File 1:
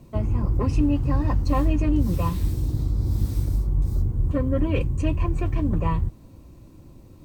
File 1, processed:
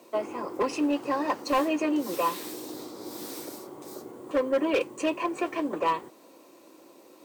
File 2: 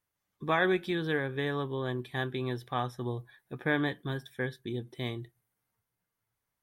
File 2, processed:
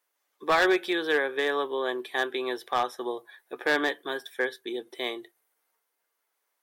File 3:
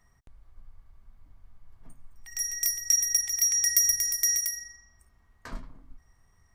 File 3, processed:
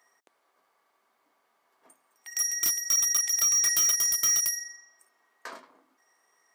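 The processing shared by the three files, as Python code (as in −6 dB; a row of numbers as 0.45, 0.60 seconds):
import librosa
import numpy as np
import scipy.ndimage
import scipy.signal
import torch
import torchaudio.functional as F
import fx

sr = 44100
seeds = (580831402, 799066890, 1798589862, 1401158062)

y = scipy.signal.sosfilt(scipy.signal.butter(4, 370.0, 'highpass', fs=sr, output='sos'), x)
y = np.clip(10.0 ** (24.5 / 20.0) * y, -1.0, 1.0) / 10.0 ** (24.5 / 20.0)
y = y * 10.0 ** (-30 / 20.0) / np.sqrt(np.mean(np.square(y)))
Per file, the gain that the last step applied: +5.5, +7.5, +3.5 decibels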